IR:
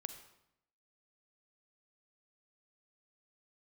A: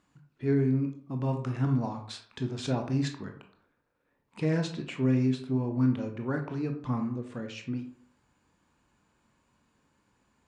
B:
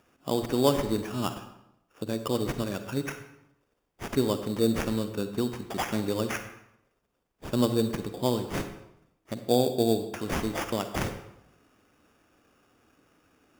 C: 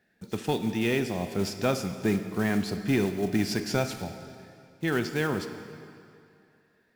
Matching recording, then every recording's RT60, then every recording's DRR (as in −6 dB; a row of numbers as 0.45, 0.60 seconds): B; 0.50, 0.80, 2.5 seconds; 4.5, 9.0, 8.0 decibels